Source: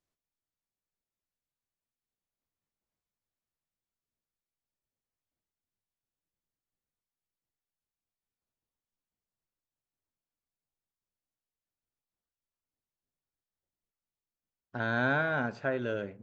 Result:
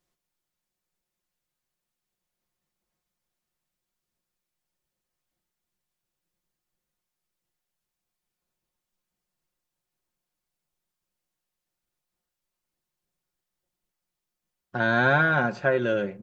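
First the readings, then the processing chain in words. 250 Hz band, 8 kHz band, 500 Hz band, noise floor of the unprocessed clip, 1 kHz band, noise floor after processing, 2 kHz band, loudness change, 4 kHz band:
+6.5 dB, no reading, +8.0 dB, under -85 dBFS, +9.0 dB, under -85 dBFS, +8.0 dB, +8.0 dB, +8.5 dB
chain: comb 5.6 ms, depth 57%; trim +7 dB

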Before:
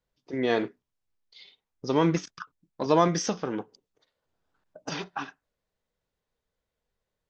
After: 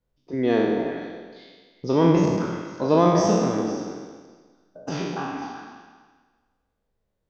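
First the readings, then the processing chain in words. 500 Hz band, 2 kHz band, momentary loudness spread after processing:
+6.5 dB, +1.5 dB, 19 LU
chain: spectral sustain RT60 1.50 s; tilt shelf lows +5.5 dB, about 690 Hz; repeats whose band climbs or falls 126 ms, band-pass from 250 Hz, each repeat 1.4 oct, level -2 dB

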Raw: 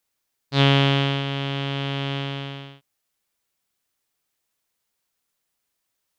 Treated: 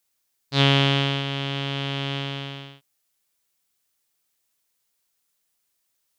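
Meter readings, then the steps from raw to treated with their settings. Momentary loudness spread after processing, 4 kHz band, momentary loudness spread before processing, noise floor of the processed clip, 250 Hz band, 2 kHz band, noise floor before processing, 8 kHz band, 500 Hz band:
15 LU, +1.5 dB, 15 LU, -74 dBFS, -2.0 dB, 0.0 dB, -78 dBFS, no reading, -2.0 dB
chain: treble shelf 3.4 kHz +7 dB; trim -2 dB

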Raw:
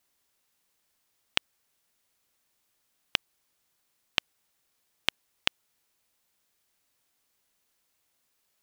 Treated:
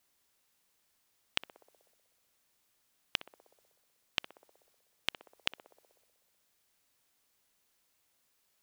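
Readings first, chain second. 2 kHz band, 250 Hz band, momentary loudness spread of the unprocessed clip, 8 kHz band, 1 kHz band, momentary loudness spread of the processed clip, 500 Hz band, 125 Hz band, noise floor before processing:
-7.0 dB, -6.5 dB, 0 LU, -7.0 dB, -6.5 dB, 18 LU, -6.0 dB, -7.0 dB, -75 dBFS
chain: band-passed feedback delay 62 ms, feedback 79%, band-pass 530 Hz, level -19.5 dB; transient shaper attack -7 dB, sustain +3 dB

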